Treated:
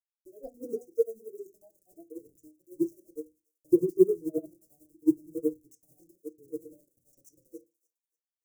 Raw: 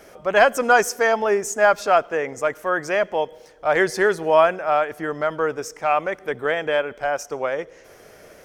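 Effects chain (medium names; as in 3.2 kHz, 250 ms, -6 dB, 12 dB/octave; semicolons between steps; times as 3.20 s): time reversed locally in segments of 81 ms; spectral noise reduction 18 dB; peaking EQ 520 Hz +6.5 dB 1.5 oct; low-pass that closes with the level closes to 2.7 kHz, closed at -17 dBFS; small samples zeroed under -35.5 dBFS; tremolo 11 Hz, depth 73%; inverse Chebyshev band-stop 930–3000 Hz, stop band 60 dB; treble shelf 9.1 kHz +10 dB; feedback echo behind a high-pass 291 ms, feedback 32%, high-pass 2.1 kHz, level -14 dB; on a send at -2 dB: reverberation RT60 0.25 s, pre-delay 3 ms; on the sum: upward expansion 2.5:1, over -32 dBFS; trim +4.5 dB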